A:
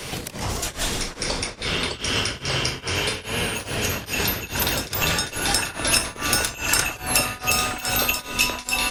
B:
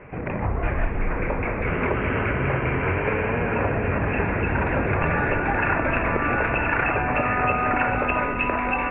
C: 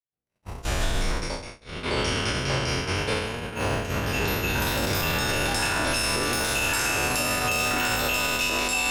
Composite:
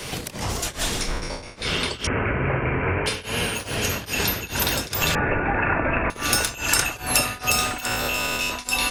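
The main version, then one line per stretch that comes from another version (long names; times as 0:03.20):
A
0:01.08–0:01.56: punch in from C
0:02.07–0:03.06: punch in from B
0:05.15–0:06.10: punch in from B
0:07.86–0:08.51: punch in from C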